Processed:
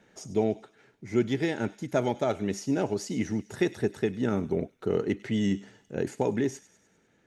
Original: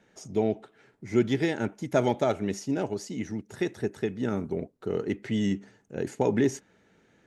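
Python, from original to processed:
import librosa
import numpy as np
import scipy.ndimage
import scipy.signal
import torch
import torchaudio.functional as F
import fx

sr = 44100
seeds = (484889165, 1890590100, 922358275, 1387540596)

y = fx.rider(x, sr, range_db=4, speed_s=0.5)
y = fx.echo_wet_highpass(y, sr, ms=100, feedback_pct=54, hz=2800.0, wet_db=-14.5)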